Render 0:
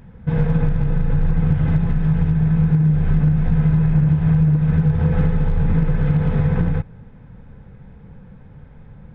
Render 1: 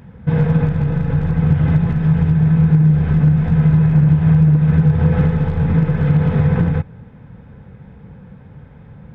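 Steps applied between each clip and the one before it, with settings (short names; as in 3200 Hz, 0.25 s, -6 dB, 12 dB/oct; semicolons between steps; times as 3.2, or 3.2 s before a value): HPF 64 Hz; gain +4 dB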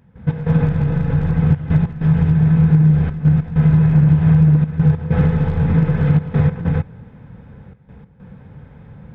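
step gate ".x.xxxxxxx" 97 bpm -12 dB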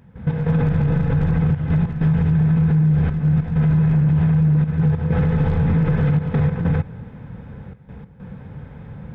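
limiter -14.5 dBFS, peak gain reduction 11 dB; gain +3.5 dB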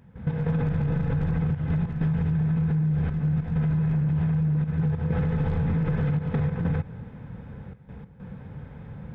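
compressor, threshold -17 dBFS, peak gain reduction 4 dB; gain -4 dB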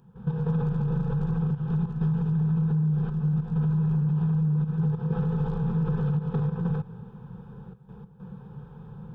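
fixed phaser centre 410 Hz, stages 8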